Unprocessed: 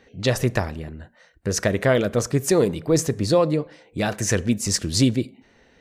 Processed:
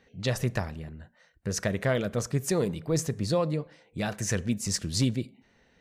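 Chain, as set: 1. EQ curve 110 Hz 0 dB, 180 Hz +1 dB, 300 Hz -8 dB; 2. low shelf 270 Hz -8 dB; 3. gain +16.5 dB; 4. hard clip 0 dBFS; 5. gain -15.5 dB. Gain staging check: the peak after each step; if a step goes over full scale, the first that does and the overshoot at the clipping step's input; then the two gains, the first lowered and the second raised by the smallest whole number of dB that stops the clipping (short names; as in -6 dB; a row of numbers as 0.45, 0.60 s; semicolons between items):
-9.0, -13.5, +3.0, 0.0, -15.5 dBFS; step 3, 3.0 dB; step 3 +13.5 dB, step 5 -12.5 dB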